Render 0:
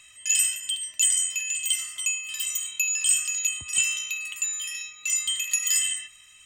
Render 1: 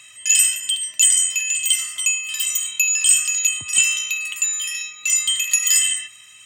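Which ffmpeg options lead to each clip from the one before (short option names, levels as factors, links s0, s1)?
-af "highpass=f=100:w=0.5412,highpass=f=100:w=1.3066,volume=2.24"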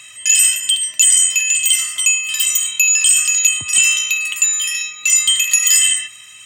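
-af "alimiter=level_in=2.24:limit=0.891:release=50:level=0:latency=1,volume=0.891"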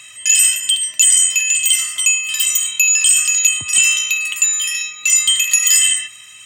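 -af anull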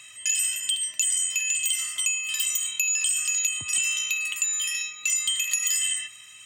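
-af "acompressor=threshold=0.2:ratio=6,volume=0.422"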